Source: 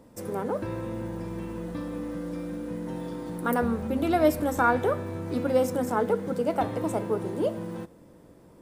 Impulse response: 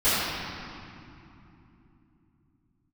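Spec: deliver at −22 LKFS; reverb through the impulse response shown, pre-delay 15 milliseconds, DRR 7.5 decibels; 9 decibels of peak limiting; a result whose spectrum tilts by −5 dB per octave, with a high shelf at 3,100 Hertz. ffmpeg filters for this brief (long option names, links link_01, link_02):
-filter_complex "[0:a]highshelf=frequency=3100:gain=-6,alimiter=limit=-19.5dB:level=0:latency=1,asplit=2[link_01][link_02];[1:a]atrim=start_sample=2205,adelay=15[link_03];[link_02][link_03]afir=irnorm=-1:irlink=0,volume=-25.5dB[link_04];[link_01][link_04]amix=inputs=2:normalize=0,volume=8.5dB"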